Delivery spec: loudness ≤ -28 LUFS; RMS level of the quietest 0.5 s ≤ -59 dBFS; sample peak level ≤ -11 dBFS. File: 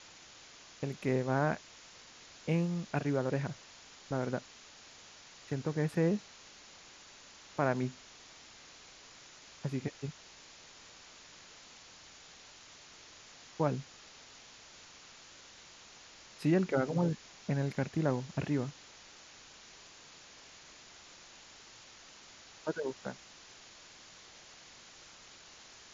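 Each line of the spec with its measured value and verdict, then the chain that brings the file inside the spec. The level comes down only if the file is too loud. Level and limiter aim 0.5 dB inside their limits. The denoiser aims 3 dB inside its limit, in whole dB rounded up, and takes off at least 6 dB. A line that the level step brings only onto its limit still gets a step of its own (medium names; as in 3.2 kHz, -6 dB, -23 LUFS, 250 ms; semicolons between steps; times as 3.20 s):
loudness -35.0 LUFS: pass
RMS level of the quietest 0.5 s -55 dBFS: fail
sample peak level -16.5 dBFS: pass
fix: noise reduction 7 dB, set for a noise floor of -55 dBFS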